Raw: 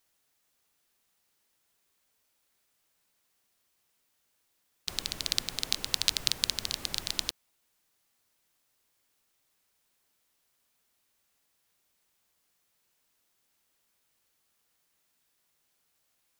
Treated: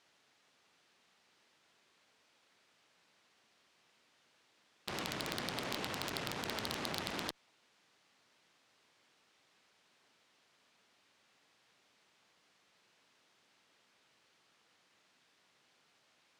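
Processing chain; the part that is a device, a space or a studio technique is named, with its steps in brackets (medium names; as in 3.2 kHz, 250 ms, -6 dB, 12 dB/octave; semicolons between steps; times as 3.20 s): valve radio (band-pass 140–4200 Hz; valve stage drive 32 dB, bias 0.45; transformer saturation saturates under 3.2 kHz); trim +11.5 dB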